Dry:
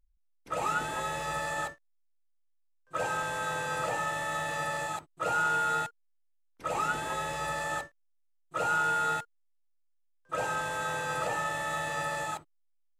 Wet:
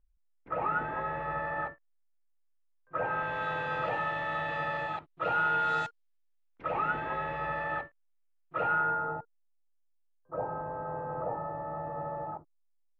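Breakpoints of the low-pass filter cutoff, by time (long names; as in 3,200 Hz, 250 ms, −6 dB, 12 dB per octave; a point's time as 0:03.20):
low-pass filter 24 dB per octave
0:03.01 2,000 Hz
0:03.42 3,300 Hz
0:05.56 3,300 Hz
0:05.85 5,800 Hz
0:06.75 2,500 Hz
0:08.64 2,500 Hz
0:09.16 1,000 Hz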